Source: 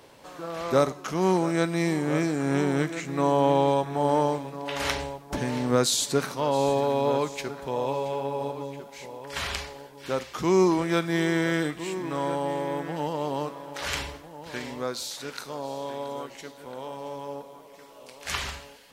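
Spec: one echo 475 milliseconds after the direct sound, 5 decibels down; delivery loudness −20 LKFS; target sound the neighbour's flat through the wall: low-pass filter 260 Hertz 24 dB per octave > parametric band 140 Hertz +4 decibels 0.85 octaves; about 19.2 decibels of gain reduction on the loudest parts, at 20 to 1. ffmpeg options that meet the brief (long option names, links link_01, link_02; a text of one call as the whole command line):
ffmpeg -i in.wav -af "acompressor=threshold=-35dB:ratio=20,lowpass=frequency=260:width=0.5412,lowpass=frequency=260:width=1.3066,equalizer=frequency=140:width_type=o:width=0.85:gain=4,aecho=1:1:475:0.562,volume=25.5dB" out.wav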